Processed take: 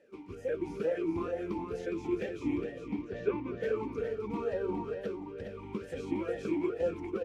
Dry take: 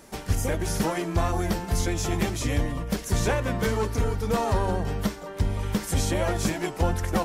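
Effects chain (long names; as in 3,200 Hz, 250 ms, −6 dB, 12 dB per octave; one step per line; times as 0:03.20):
low-shelf EQ 430 Hz +7.5 dB
automatic gain control gain up to 5.5 dB
0:02.80–0:03.60: high-frequency loss of the air 150 metres
single-tap delay 411 ms −7 dB
formant filter swept between two vowels e-u 2.2 Hz
level −4.5 dB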